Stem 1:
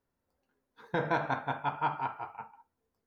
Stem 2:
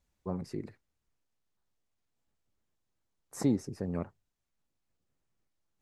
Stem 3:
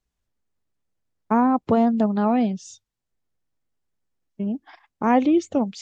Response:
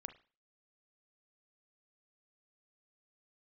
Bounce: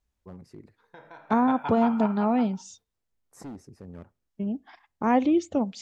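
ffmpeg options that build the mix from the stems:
-filter_complex "[0:a]highpass=f=370:p=1,acompressor=threshold=-36dB:ratio=2,volume=2.5dB,asplit=2[a][b];[b]volume=-10.5dB[c];[1:a]asoftclip=type=hard:threshold=-27.5dB,acontrast=69,volume=-16.5dB,asplit=2[d][e];[e]volume=-11dB[f];[2:a]volume=-5dB,asplit=3[g][h][i];[h]volume=-10.5dB[j];[i]apad=whole_len=135194[k];[a][k]sidechaingate=range=-33dB:threshold=-57dB:ratio=16:detection=peak[l];[3:a]atrim=start_sample=2205[m];[c][f][j]amix=inputs=3:normalize=0[n];[n][m]afir=irnorm=-1:irlink=0[o];[l][d][g][o]amix=inputs=4:normalize=0,equalizer=f=62:w=1.5:g=6.5"

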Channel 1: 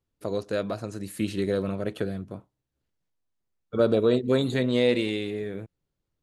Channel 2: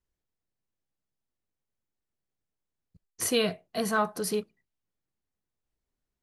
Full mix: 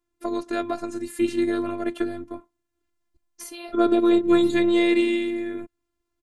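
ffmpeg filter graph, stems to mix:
-filter_complex "[0:a]equalizer=f=125:t=o:w=1:g=3,equalizer=f=250:t=o:w=1:g=11,equalizer=f=1k:t=o:w=1:g=8,equalizer=f=2k:t=o:w=1:g=6,equalizer=f=8k:t=o:w=1:g=6,volume=1dB,asplit=2[a][b];[1:a]alimiter=level_in=2dB:limit=-24dB:level=0:latency=1:release=366,volume=-2dB,adelay=200,volume=2.5dB[c];[b]apad=whole_len=283279[d];[c][d]sidechaincompress=threshold=-24dB:ratio=8:attack=16:release=1010[e];[a][e]amix=inputs=2:normalize=0,afftfilt=real='hypot(re,im)*cos(PI*b)':imag='0':win_size=512:overlap=0.75"

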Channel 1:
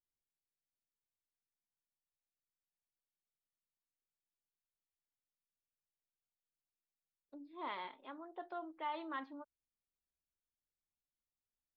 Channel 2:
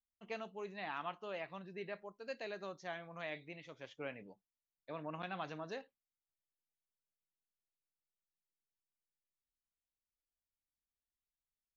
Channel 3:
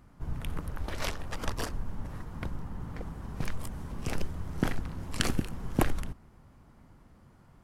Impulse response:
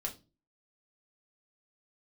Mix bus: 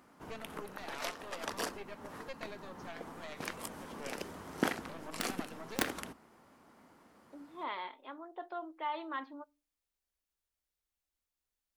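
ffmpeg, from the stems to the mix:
-filter_complex "[0:a]volume=3dB,asplit=2[a][b];[b]volume=-19.5dB[c];[1:a]equalizer=f=71:w=0.6:g=13,aeval=exprs='0.0422*(cos(1*acos(clip(val(0)/0.0422,-1,1)))-cos(1*PI/2))+0.0133*(cos(4*acos(clip(val(0)/0.0422,-1,1)))-cos(4*PI/2))':c=same,volume=-3dB,asplit=2[d][e];[2:a]highpass=210,aeval=exprs='(mod(5.96*val(0)+1,2)-1)/5.96':c=same,volume=1.5dB,asplit=2[f][g];[g]volume=-16.5dB[h];[e]apad=whole_len=336814[i];[f][i]sidechaincompress=threshold=-49dB:ratio=8:attack=33:release=228[j];[3:a]atrim=start_sample=2205[k];[c][h]amix=inputs=2:normalize=0[l];[l][k]afir=irnorm=-1:irlink=0[m];[a][d][j][m]amix=inputs=4:normalize=0,equalizer=f=130:w=1.1:g=-10"

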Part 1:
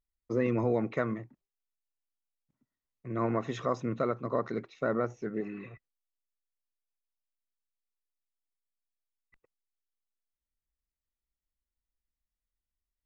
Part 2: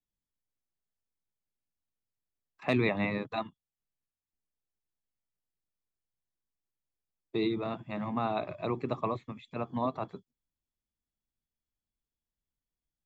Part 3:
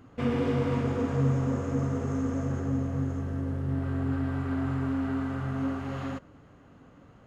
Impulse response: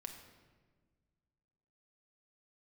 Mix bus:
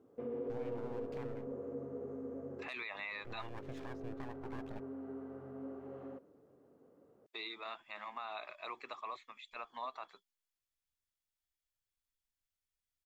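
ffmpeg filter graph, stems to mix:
-filter_complex "[0:a]lowpass=f=2.6k:p=1,acompressor=threshold=-35dB:ratio=6,aeval=exprs='abs(val(0))':c=same,adelay=200,volume=-6.5dB,asplit=3[a][b][c];[a]atrim=end=4.8,asetpts=PTS-STARTPTS,afade=t=out:st=4.796:d=0.004:c=hsin[d];[b]atrim=start=4.8:end=7.6,asetpts=PTS-STARTPTS,volume=0[e];[c]atrim=start=7.6,asetpts=PTS-STARTPTS,afade=t=in:d=0.004:c=hsin[f];[d][e][f]concat=n=3:v=0:a=1[g];[1:a]highpass=1.3k,volume=1dB,asplit=2[h][i];[2:a]acompressor=threshold=-34dB:ratio=1.5,bandpass=f=440:t=q:w=3:csg=0,volume=-3dB,asplit=2[j][k];[k]volume=-12.5dB[l];[i]apad=whole_len=320329[m];[j][m]sidechaincompress=threshold=-52dB:ratio=8:attack=16:release=171[n];[3:a]atrim=start_sample=2205[o];[l][o]afir=irnorm=-1:irlink=0[p];[g][h][n][p]amix=inputs=4:normalize=0,alimiter=level_in=8.5dB:limit=-24dB:level=0:latency=1:release=47,volume=-8.5dB"

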